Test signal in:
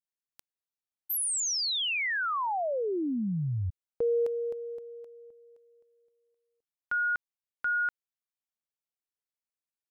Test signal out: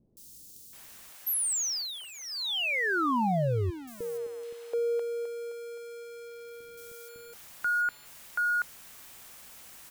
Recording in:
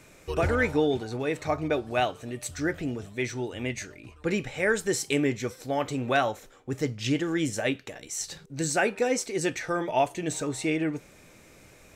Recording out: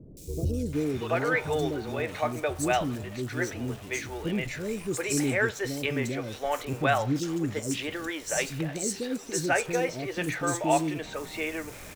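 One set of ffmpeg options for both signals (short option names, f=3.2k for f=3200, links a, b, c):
-filter_complex "[0:a]aeval=exprs='val(0)+0.5*0.0112*sgn(val(0))':c=same,acrossover=split=400|4400[a][b][c];[c]adelay=170[d];[b]adelay=730[e];[a][e][d]amix=inputs=3:normalize=0"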